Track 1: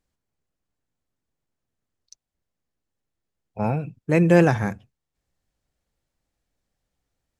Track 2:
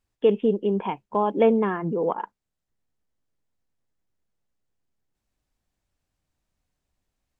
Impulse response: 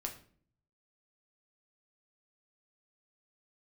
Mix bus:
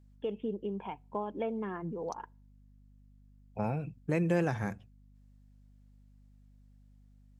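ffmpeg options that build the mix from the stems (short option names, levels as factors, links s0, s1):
-filter_complex "[0:a]aeval=exprs='val(0)+0.00178*(sin(2*PI*50*n/s)+sin(2*PI*2*50*n/s)/2+sin(2*PI*3*50*n/s)/3+sin(2*PI*4*50*n/s)/4+sin(2*PI*5*50*n/s)/5)':c=same,volume=0.708[s0];[1:a]aphaser=in_gain=1:out_gain=1:delay=1.5:decay=0.31:speed=1.7:type=triangular,volume=0.251,asplit=2[s1][s2];[s2]volume=0.075[s3];[2:a]atrim=start_sample=2205[s4];[s3][s4]afir=irnorm=-1:irlink=0[s5];[s0][s1][s5]amix=inputs=3:normalize=0,acompressor=threshold=0.0224:ratio=2"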